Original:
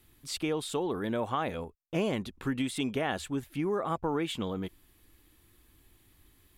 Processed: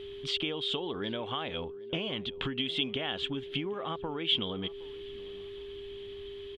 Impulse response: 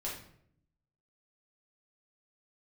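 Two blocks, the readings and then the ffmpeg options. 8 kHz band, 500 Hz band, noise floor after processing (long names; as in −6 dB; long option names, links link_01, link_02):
below −10 dB, −2.5 dB, −43 dBFS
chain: -filter_complex "[0:a]acompressor=threshold=-41dB:ratio=12,lowpass=frequency=3200:width_type=q:width=8.3,asplit=2[link_01][link_02];[link_02]adelay=766,lowpass=frequency=1600:poles=1,volume=-21dB,asplit=2[link_03][link_04];[link_04]adelay=766,lowpass=frequency=1600:poles=1,volume=0.42,asplit=2[link_05][link_06];[link_06]adelay=766,lowpass=frequency=1600:poles=1,volume=0.42[link_07];[link_01][link_03][link_05][link_07]amix=inputs=4:normalize=0,aeval=exprs='val(0)+0.00398*sin(2*PI*400*n/s)':channel_layout=same,volume=7.5dB"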